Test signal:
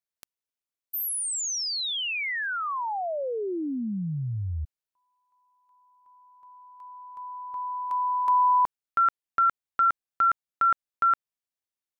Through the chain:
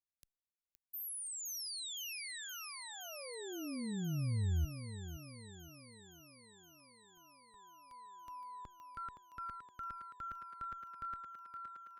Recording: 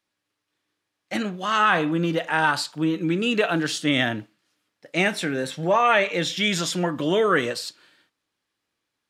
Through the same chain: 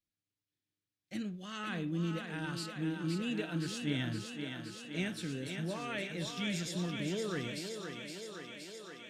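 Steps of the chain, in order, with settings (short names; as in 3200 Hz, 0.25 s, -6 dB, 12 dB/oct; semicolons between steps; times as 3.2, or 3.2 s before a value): passive tone stack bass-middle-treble 10-0-1; thinning echo 0.518 s, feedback 78%, high-pass 200 Hz, level -5.5 dB; gain +6.5 dB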